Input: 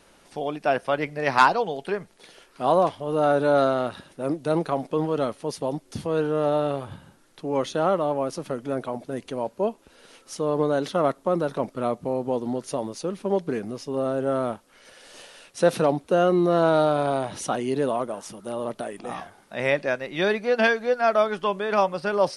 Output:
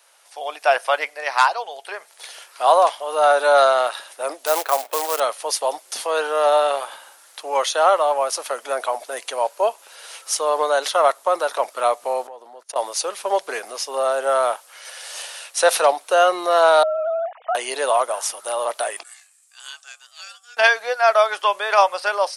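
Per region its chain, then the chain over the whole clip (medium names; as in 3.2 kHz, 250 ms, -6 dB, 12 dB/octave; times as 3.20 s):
4.46–5.20 s: low-pass 2.7 kHz + short-mantissa float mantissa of 2-bit
12.27–12.76 s: gate -37 dBFS, range -29 dB + treble shelf 2 kHz -10 dB + compression 16:1, threshold -36 dBFS
16.83–17.55 s: formants replaced by sine waves + low-pass 1.1 kHz + compression 3:1, threshold -28 dBFS
19.03–20.57 s: ring modulator 960 Hz + band-pass filter 7.8 kHz, Q 3.7
whole clip: high-pass 630 Hz 24 dB/octave; treble shelf 6.5 kHz +10 dB; level rider gain up to 12 dB; trim -1 dB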